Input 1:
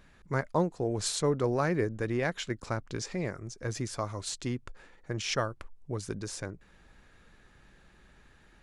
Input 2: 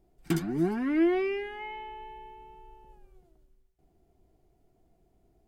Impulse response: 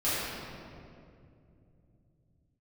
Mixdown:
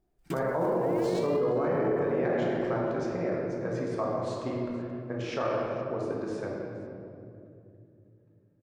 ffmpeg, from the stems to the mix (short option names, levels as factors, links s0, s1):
-filter_complex "[0:a]agate=range=0.0316:threshold=0.00224:ratio=16:detection=peak,bandpass=f=600:t=q:w=0.84:csg=0,volume=0.841,asplit=3[s0][s1][s2];[s1]volume=0.668[s3];[s2]volume=0.178[s4];[1:a]acrusher=bits=6:mode=log:mix=0:aa=0.000001,volume=0.376[s5];[2:a]atrim=start_sample=2205[s6];[s3][s6]afir=irnorm=-1:irlink=0[s7];[s4]aecho=0:1:472:1[s8];[s0][s5][s7][s8]amix=inputs=4:normalize=0,alimiter=limit=0.1:level=0:latency=1:release=16"